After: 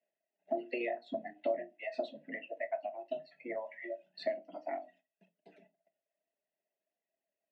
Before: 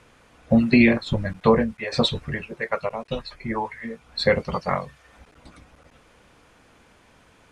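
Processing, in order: reverb removal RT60 1.2 s; gate -51 dBFS, range -27 dB; vowel filter e; tone controls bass +9 dB, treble +1 dB; compression 2.5:1, threshold -42 dBFS, peak gain reduction 17 dB; frequency shift +120 Hz; tilt EQ -1.5 dB/octave; on a send: reverberation RT60 0.25 s, pre-delay 5 ms, DRR 9 dB; on the sum: trim +2.5 dB

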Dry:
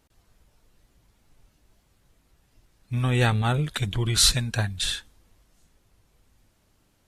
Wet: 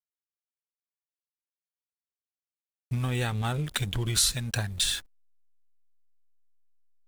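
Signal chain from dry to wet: hysteresis with a dead band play -38.5 dBFS; compression 6:1, threshold -31 dBFS, peak gain reduction 15.5 dB; treble shelf 6.3 kHz +11 dB; trim +4 dB

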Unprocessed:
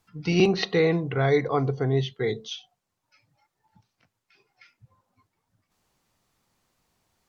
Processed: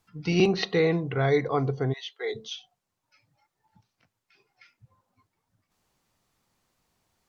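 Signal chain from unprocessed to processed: 1.92–2.34 s: high-pass 1.3 kHz -> 350 Hz 24 dB/octave; trim -1.5 dB

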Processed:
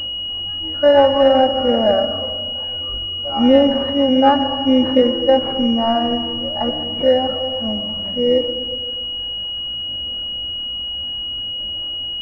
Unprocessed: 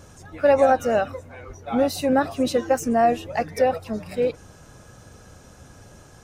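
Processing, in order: comb 3.5 ms, depth 70%; tempo 0.51×; phaser 0.59 Hz, delay 1.3 ms, feedback 31%; algorithmic reverb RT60 1.7 s, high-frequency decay 0.9×, pre-delay 60 ms, DRR 8 dB; class-D stage that switches slowly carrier 2.9 kHz; trim +2 dB

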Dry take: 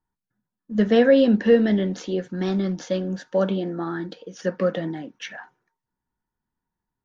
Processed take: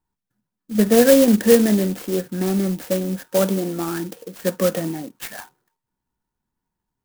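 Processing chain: sampling jitter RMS 0.082 ms; trim +3 dB

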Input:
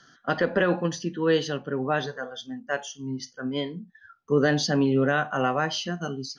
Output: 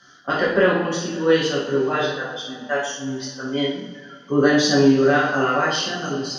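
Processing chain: bass shelf 180 Hz -4 dB; two-slope reverb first 0.61 s, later 3.4 s, from -19 dB, DRR -6 dB

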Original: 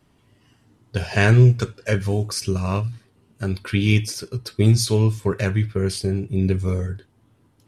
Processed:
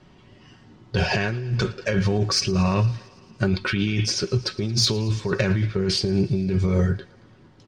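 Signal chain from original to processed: low-pass 5.9 kHz 24 dB/octave; comb 5.4 ms, depth 37%; in parallel at 0 dB: peak limiter -11 dBFS, peak gain reduction 8.5 dB; on the sum: compressor with a negative ratio -19 dBFS, ratio -1; saturation -5.5 dBFS, distortion -28 dB; on a send: thinning echo 113 ms, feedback 72%, high-pass 330 Hz, level -21 dB; on the sum: trim -2 dB

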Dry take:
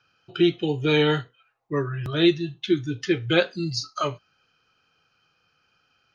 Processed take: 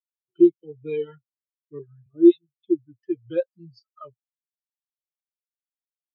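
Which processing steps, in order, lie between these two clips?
1.79–2.48 s: phase dispersion highs, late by 105 ms, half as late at 2.1 kHz; reverb removal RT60 1.7 s; spectral contrast expander 2.5:1; trim +1.5 dB

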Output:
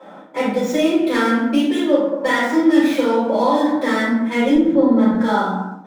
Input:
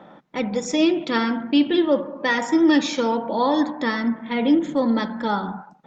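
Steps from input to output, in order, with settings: median filter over 9 samples; high-pass 250 Hz 12 dB/octave; 4.55–5.14 s: tilt EQ -3.5 dB/octave; compression 4:1, threshold -22 dBFS, peak gain reduction 9 dB; reverberation RT60 0.65 s, pre-delay 4 ms, DRR -11.5 dB; trim -6.5 dB

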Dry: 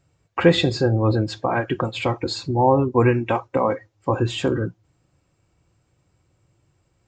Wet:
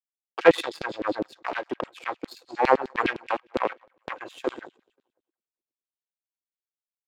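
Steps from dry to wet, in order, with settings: two-band feedback delay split 340 Hz, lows 267 ms, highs 178 ms, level -16 dB; power-law waveshaper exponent 2; LFO high-pass saw down 9.8 Hz 250–3800 Hz; trim +2 dB

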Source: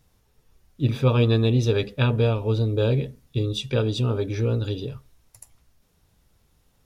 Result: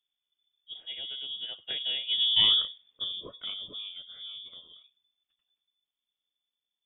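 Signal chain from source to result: Doppler pass-by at 2.41 s, 53 m/s, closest 9 m; frequency inversion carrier 3.5 kHz; trim -1 dB

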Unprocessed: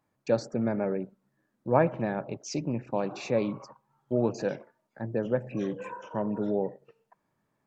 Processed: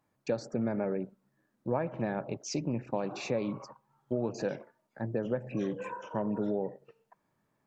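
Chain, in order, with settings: compression 6:1, threshold -27 dBFS, peak gain reduction 10.5 dB

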